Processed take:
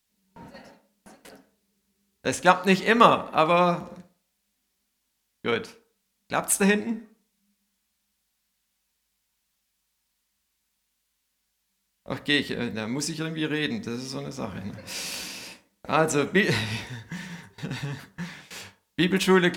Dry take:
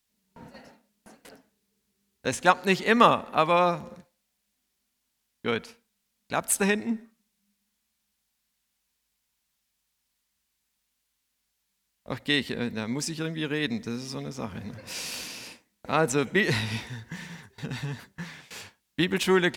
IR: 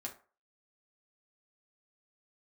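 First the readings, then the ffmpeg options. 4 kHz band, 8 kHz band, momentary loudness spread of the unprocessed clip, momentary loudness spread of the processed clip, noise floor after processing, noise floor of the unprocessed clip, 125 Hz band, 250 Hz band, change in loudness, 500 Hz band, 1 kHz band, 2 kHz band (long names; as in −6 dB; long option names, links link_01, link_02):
+1.5 dB, +1.5 dB, 18 LU, 18 LU, −76 dBFS, −78 dBFS, +2.5 dB, +2.5 dB, +2.0 dB, +2.0 dB, +2.0 dB, +2.0 dB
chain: -filter_complex "[0:a]asplit=2[link_01][link_02];[1:a]atrim=start_sample=2205,asetrate=34839,aresample=44100[link_03];[link_02][link_03]afir=irnorm=-1:irlink=0,volume=-3.5dB[link_04];[link_01][link_04]amix=inputs=2:normalize=0,volume=-1.5dB"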